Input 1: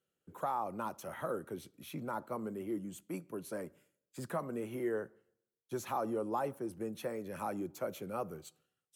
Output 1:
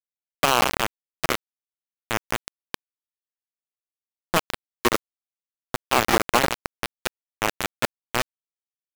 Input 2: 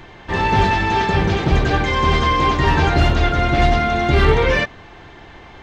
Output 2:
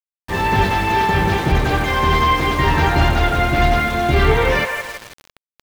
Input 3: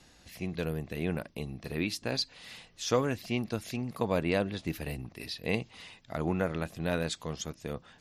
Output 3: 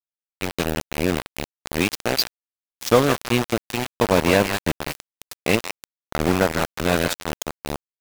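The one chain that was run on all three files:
band-limited delay 0.162 s, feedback 50%, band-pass 1300 Hz, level -3 dB; sample gate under -28.5 dBFS; normalise peaks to -3 dBFS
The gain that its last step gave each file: +19.0, -1.0, +11.5 dB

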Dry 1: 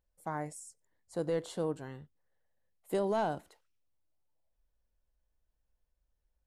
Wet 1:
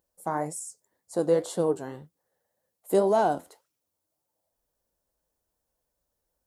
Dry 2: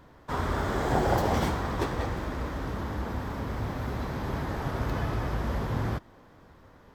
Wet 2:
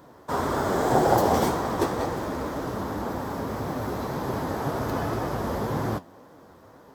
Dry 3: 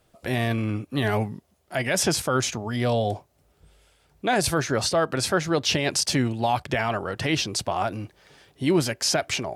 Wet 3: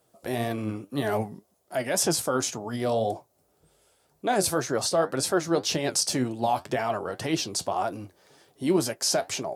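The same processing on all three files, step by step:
HPF 420 Hz 6 dB/oct; bell 2400 Hz -11.5 dB 2.1 oct; flange 1.9 Hz, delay 5.6 ms, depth 6.6 ms, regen +65%; match loudness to -27 LUFS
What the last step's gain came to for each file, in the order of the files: +17.5, +15.0, +7.5 dB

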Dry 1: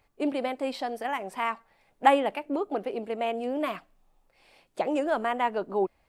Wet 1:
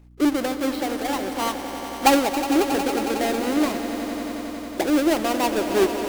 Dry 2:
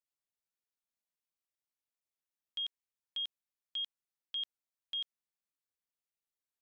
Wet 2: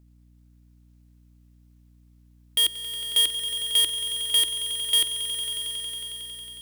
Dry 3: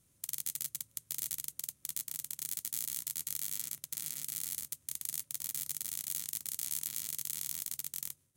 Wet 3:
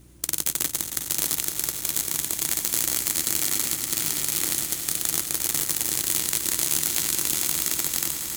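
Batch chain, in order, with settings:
half-waves squared off; bell 330 Hz +12 dB 0.43 oct; on a send: swelling echo 91 ms, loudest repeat 5, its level -13 dB; on the sum: hum 60 Hz, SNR 27 dB; match loudness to -23 LUFS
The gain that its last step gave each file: -1.5, +13.5, +10.0 dB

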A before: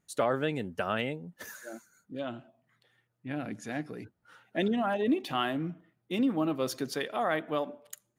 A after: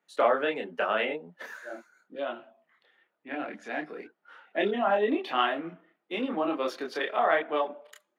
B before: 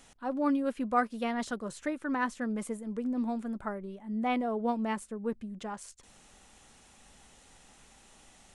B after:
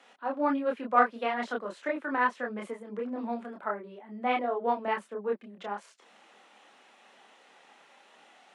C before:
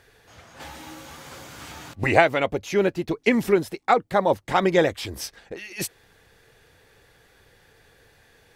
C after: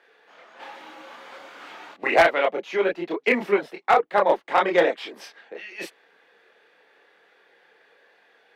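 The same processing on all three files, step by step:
steep high-pass 170 Hz 36 dB/oct; added harmonics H 5 -14 dB, 7 -17 dB, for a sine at -0.5 dBFS; chorus voices 4, 1.2 Hz, delay 27 ms, depth 3 ms; three-band isolator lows -17 dB, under 350 Hz, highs -20 dB, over 3700 Hz; overloaded stage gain 13 dB; normalise peaks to -9 dBFS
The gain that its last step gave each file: +8.5, +8.0, +4.0 dB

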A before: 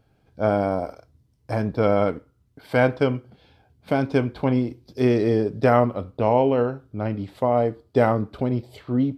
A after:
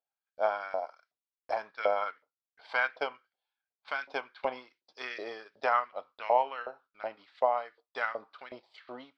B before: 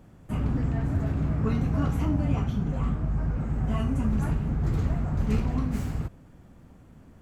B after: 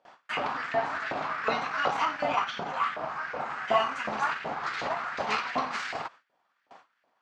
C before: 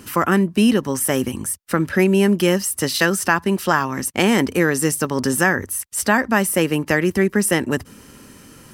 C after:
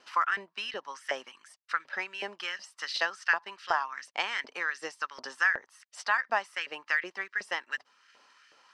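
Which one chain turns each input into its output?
ladder low-pass 5800 Hz, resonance 35%; low shelf 430 Hz -5.5 dB; transient shaper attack +3 dB, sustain -4 dB; LFO high-pass saw up 2.7 Hz 610–1900 Hz; tone controls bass +3 dB, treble -2 dB; gate with hold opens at -55 dBFS; normalise peaks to -12 dBFS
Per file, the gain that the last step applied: -1.0, +17.5, -6.0 dB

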